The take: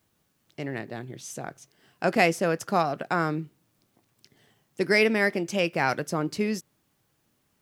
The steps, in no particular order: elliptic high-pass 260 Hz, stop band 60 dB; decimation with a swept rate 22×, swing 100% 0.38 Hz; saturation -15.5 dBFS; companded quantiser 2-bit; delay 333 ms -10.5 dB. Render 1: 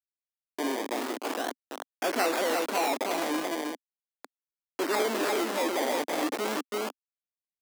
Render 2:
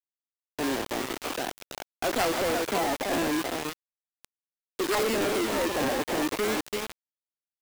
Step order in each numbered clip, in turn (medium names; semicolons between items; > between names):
decimation with a swept rate > delay > companded quantiser > saturation > elliptic high-pass; delay > decimation with a swept rate > elliptic high-pass > companded quantiser > saturation